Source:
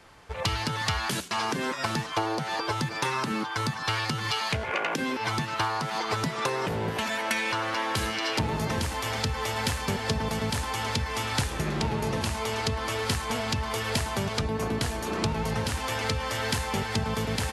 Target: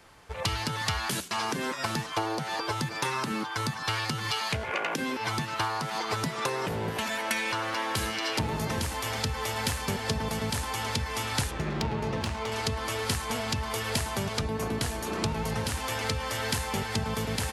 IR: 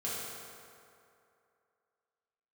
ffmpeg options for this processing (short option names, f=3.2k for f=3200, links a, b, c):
-filter_complex "[0:a]highshelf=f=10k:g=8,asettb=1/sr,asplit=3[a][b][c];[a]atrim=end=11.514[d];[b]atrim=start=11.51:end=12.52,asetpts=PTS-STARTPTS,afade=t=in:d=0.004:c=qsin,afade=t=out:st=1.006:d=0.004:c=qsin,adynamicsmooth=sensitivity=3.5:basefreq=3.7k[e];[c]atrim=start=12.516[f];[d][e]acrossfade=d=0.004:c1=hsin:c2=qsin[g];[g][f]acrossfade=d=0.004:c1=qsin:c2=hsin,volume=-2dB"